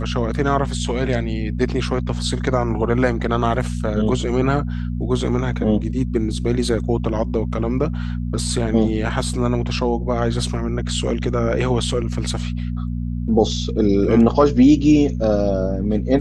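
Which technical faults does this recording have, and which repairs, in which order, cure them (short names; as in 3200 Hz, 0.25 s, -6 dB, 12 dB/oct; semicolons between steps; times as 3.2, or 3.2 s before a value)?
hum 60 Hz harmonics 4 -24 dBFS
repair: de-hum 60 Hz, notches 4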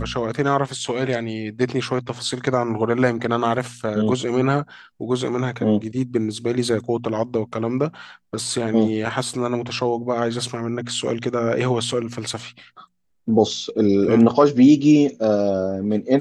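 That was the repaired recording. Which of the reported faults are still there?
none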